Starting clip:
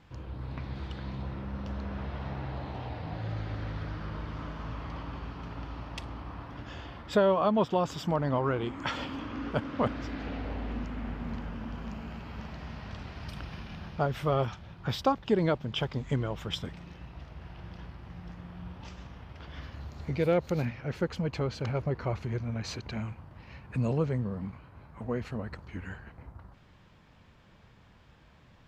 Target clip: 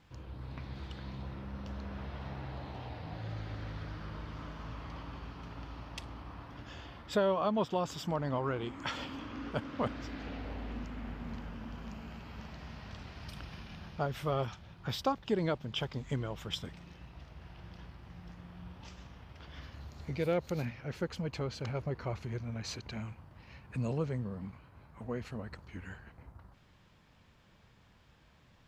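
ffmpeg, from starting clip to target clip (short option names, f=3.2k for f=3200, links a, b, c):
-af "highshelf=f=3.7k:g=6.5,volume=-5.5dB"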